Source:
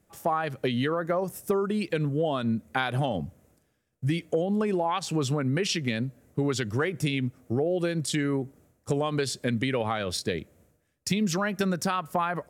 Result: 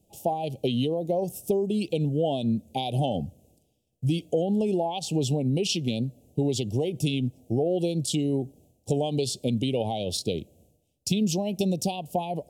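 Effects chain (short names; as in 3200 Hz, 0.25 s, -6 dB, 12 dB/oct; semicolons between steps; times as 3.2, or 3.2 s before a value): elliptic band-stop 770–2800 Hz, stop band 60 dB; gain +2 dB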